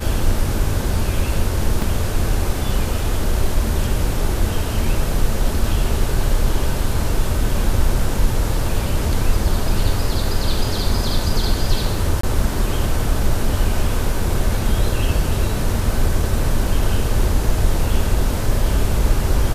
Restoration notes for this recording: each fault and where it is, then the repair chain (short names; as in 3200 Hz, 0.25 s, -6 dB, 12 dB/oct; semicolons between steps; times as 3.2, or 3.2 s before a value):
1.82 gap 2.9 ms
12.21–12.23 gap 24 ms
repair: interpolate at 1.82, 2.9 ms; interpolate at 12.21, 24 ms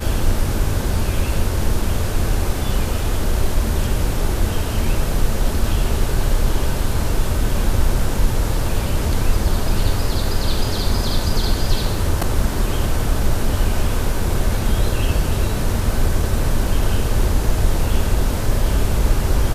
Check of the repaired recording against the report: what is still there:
none